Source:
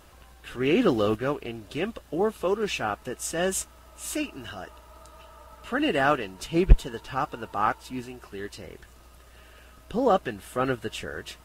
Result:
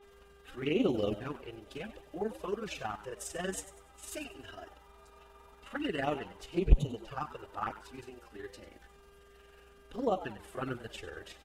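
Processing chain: granulator 75 ms, grains 22 per s, spray 13 ms, pitch spread up and down by 0 st; mains buzz 400 Hz, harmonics 9, -52 dBFS -7 dB/octave; touch-sensitive flanger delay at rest 5 ms, full sweep at -20.5 dBFS; on a send: frequency-shifting echo 97 ms, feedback 38%, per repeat +100 Hz, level -14.5 dB; on the sum: trim -5 dB

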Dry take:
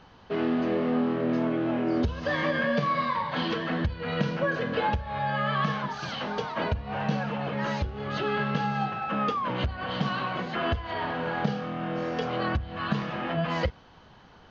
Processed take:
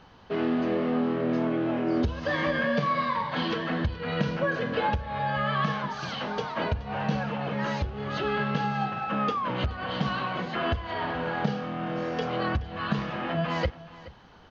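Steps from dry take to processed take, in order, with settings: delay 425 ms -18.5 dB

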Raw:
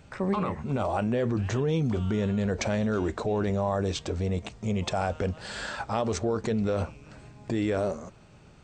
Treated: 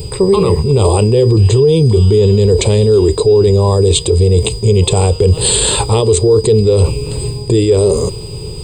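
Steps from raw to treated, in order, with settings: FFT filter 130 Hz 0 dB, 250 Hz -16 dB, 430 Hz +6 dB, 650 Hz -20 dB, 1 kHz -9 dB, 1.5 kHz -27 dB, 2.8 kHz -6 dB, 3.9 kHz 0 dB, 5.7 kHz -18 dB, 8.7 kHz +15 dB; reverse; compression 6:1, threshold -36 dBFS, peak gain reduction 13.5 dB; reverse; whistle 4.9 kHz -60 dBFS; loudness maximiser +31.5 dB; tape noise reduction on one side only decoder only; trim -1 dB

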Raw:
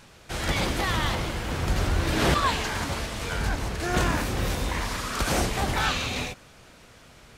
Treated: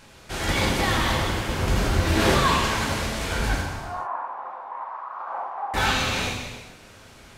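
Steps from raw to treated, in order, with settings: 3.61–5.74 s: Butterworth band-pass 930 Hz, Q 2.2; gated-style reverb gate 480 ms falling, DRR -1.5 dB

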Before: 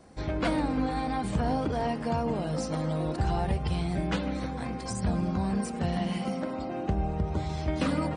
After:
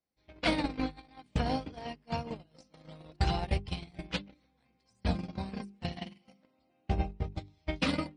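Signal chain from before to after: gate -25 dBFS, range -41 dB; high-order bell 3.4 kHz +9 dB; hum notches 50/100/150/200/250/300/350/400 Hz; trim +3 dB

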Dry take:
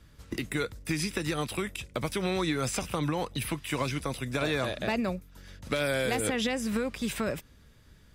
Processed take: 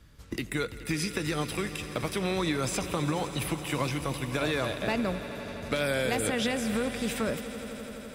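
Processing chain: echo with a slow build-up 84 ms, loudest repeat 5, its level -17 dB

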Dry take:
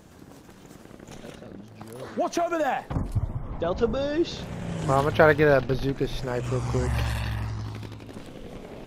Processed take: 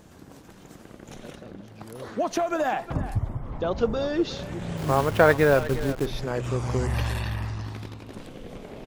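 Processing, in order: 4.77–6.06 s: send-on-delta sampling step -32 dBFS; speakerphone echo 360 ms, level -13 dB

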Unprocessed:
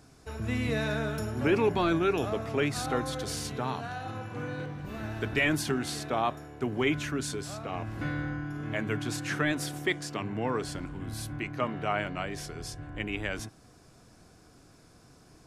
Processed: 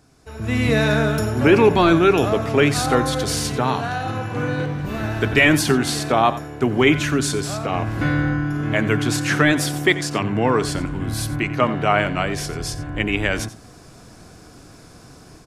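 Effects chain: on a send: delay 89 ms -15.5 dB; on the sum: level rider gain up to 12.5 dB

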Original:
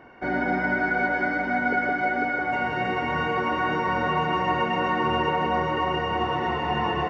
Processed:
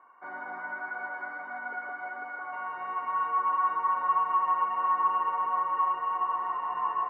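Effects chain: band-pass filter 1.1 kHz, Q 9.7; trim +4.5 dB

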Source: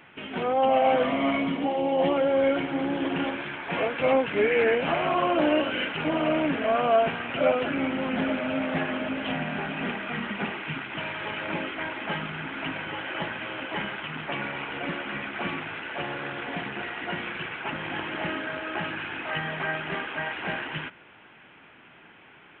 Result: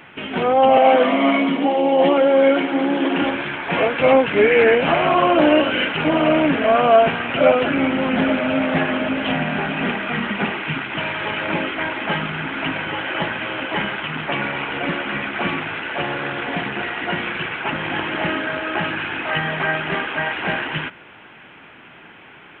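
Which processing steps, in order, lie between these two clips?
0.77–3.22 s: steep high-pass 180 Hz 48 dB/octave; trim +8.5 dB

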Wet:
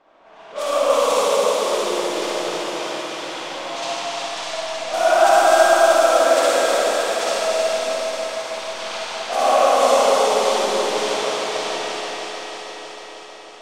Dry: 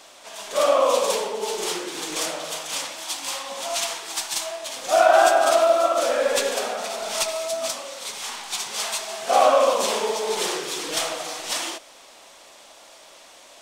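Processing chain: level-controlled noise filter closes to 1.3 kHz, open at -16.5 dBFS; echo whose repeats swap between lows and highs 158 ms, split 1.4 kHz, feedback 83%, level -4 dB; reverberation RT60 4.0 s, pre-delay 48 ms, DRR -8.5 dB; trim -6.5 dB

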